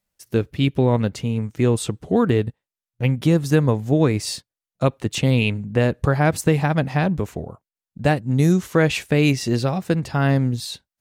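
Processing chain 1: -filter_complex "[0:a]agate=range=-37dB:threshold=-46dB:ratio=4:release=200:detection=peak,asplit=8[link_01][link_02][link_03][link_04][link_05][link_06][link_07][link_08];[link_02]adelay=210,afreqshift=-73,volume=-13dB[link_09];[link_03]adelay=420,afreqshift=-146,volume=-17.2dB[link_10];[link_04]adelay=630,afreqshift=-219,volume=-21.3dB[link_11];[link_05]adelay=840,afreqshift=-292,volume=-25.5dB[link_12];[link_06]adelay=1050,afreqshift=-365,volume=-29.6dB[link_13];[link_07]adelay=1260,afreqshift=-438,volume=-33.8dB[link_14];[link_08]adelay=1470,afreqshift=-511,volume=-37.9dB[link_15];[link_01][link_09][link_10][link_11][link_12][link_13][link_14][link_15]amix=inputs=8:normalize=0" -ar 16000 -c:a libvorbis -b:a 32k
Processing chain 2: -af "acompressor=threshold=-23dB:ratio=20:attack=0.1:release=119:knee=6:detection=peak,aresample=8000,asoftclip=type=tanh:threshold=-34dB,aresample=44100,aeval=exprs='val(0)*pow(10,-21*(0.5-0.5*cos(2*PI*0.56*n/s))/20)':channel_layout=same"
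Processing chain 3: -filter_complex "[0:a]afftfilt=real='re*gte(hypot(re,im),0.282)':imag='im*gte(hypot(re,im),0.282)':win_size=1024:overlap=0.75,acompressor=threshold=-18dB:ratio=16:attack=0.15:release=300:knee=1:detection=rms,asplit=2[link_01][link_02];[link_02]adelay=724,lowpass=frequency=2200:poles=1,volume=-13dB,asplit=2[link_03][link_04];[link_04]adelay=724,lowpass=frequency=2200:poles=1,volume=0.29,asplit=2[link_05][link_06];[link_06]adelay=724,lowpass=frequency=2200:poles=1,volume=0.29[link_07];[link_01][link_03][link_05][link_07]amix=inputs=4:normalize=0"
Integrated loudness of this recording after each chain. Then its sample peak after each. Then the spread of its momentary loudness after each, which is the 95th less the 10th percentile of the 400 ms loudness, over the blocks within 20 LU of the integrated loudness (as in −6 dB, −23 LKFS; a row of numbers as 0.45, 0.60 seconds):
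−20.5, −42.5, −28.5 LKFS; −3.0, −29.5, −15.5 dBFS; 9, 19, 9 LU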